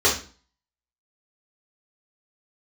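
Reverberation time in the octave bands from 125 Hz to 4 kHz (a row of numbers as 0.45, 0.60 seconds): 0.50, 0.50, 0.40, 0.40, 0.35, 0.35 seconds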